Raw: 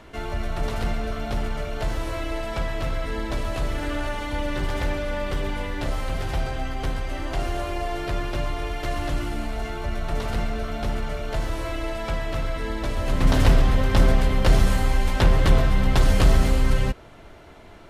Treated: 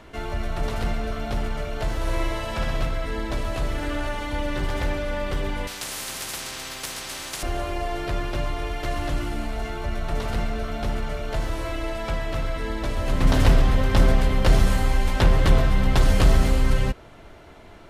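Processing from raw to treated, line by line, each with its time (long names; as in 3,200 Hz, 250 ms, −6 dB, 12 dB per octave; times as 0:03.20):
0:01.95–0:02.86: flutter between parallel walls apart 10.8 metres, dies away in 1.1 s
0:05.67–0:07.43: every bin compressed towards the loudest bin 10 to 1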